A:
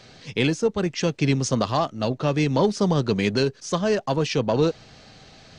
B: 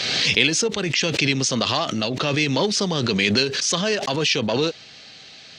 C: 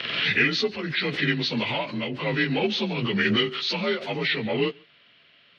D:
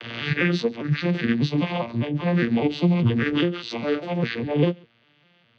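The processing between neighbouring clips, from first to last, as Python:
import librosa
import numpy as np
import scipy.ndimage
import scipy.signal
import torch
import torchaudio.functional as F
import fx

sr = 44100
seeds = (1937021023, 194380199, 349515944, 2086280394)

y1 = fx.weighting(x, sr, curve='D')
y1 = fx.pre_swell(y1, sr, db_per_s=25.0)
y1 = F.gain(torch.from_numpy(y1), -2.0).numpy()
y2 = fx.partial_stretch(y1, sr, pct=88)
y2 = y2 + 10.0 ** (-20.0 / 20.0) * np.pad(y2, (int(140 * sr / 1000.0), 0))[:len(y2)]
y2 = fx.upward_expand(y2, sr, threshold_db=-41.0, expansion=1.5)
y3 = fx.vocoder_arp(y2, sr, chord='major triad', root=46, every_ms=201)
y3 = F.gain(torch.from_numpy(y3), 3.5).numpy()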